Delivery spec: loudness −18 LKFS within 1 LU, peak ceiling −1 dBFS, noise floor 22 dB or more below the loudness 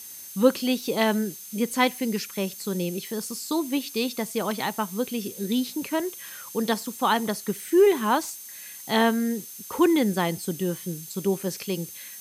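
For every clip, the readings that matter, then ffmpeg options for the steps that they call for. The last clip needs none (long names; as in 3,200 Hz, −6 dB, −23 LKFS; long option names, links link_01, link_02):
interfering tone 6,300 Hz; level of the tone −47 dBFS; background noise floor −42 dBFS; target noise floor −48 dBFS; integrated loudness −26.0 LKFS; sample peak −6.0 dBFS; target loudness −18.0 LKFS
→ -af "bandreject=frequency=6300:width=30"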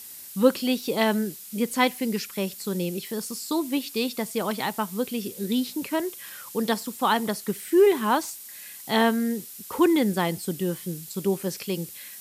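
interfering tone none found; background noise floor −42 dBFS; target noise floor −48 dBFS
→ -af "afftdn=noise_reduction=6:noise_floor=-42"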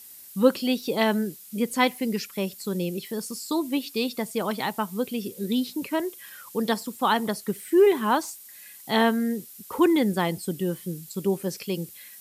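background noise floor −46 dBFS; target noise floor −48 dBFS
→ -af "afftdn=noise_reduction=6:noise_floor=-46"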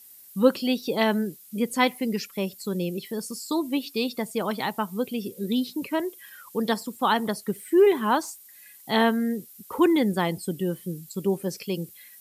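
background noise floor −50 dBFS; integrated loudness −26.0 LKFS; sample peak −6.5 dBFS; target loudness −18.0 LKFS
→ -af "volume=8dB,alimiter=limit=-1dB:level=0:latency=1"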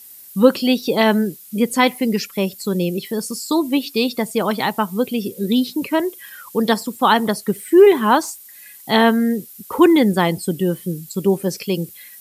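integrated loudness −18.5 LKFS; sample peak −1.0 dBFS; background noise floor −42 dBFS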